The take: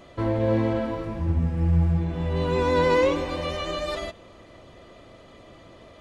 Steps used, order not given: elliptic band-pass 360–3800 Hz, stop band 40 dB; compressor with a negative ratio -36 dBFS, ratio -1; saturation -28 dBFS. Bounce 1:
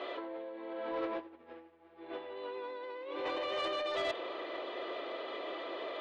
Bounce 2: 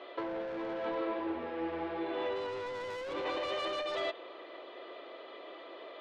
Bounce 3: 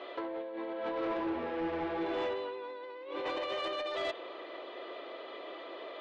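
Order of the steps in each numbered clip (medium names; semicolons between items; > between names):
compressor with a negative ratio > elliptic band-pass > saturation; elliptic band-pass > saturation > compressor with a negative ratio; elliptic band-pass > compressor with a negative ratio > saturation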